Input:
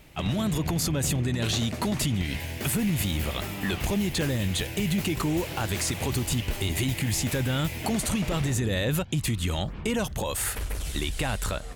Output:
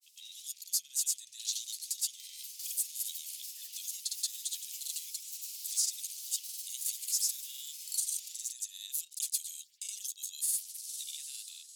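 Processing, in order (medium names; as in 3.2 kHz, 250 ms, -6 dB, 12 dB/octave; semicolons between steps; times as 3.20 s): inverse Chebyshev high-pass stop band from 1.1 kHz, stop band 70 dB; in parallel at -7 dB: saturation -28 dBFS, distortion -12 dB; on the sum: granulator, grains 20 per s, pitch spread up and down by 0 st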